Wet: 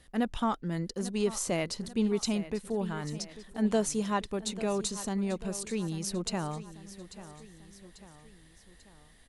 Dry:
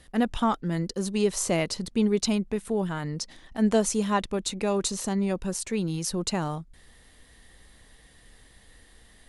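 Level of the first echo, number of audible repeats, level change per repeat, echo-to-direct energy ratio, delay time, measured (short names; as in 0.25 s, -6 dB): -15.0 dB, 3, -5.5 dB, -13.5 dB, 0.842 s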